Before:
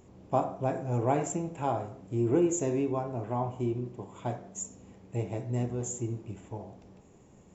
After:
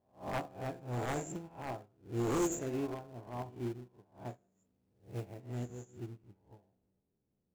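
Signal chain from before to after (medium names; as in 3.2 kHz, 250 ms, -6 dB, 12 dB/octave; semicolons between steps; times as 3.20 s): reverse spectral sustain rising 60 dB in 0.78 s; level-controlled noise filter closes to 600 Hz, open at -23.5 dBFS; in parallel at -11.5 dB: sample-rate reducer 1.1 kHz, jitter 20%; on the sum: wavefolder -20 dBFS; 4.51–5.40 s: companded quantiser 6-bit; upward expansion 2.5:1, over -40 dBFS; trim -5 dB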